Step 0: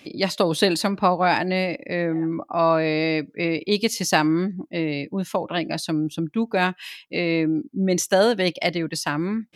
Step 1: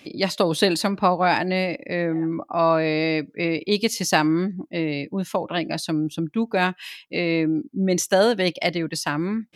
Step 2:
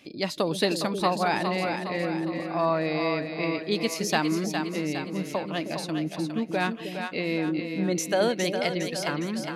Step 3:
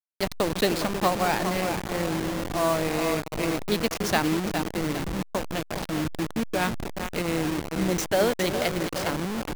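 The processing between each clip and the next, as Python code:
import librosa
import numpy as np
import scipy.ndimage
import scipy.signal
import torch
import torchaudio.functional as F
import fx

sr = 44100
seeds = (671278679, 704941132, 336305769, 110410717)

y1 = x
y2 = fx.echo_split(y1, sr, split_hz=500.0, low_ms=312, high_ms=410, feedback_pct=52, wet_db=-6.0)
y2 = y2 * librosa.db_to_amplitude(-6.0)
y3 = fx.delta_hold(y2, sr, step_db=-25.0)
y3 = y3 * librosa.db_to_amplitude(1.5)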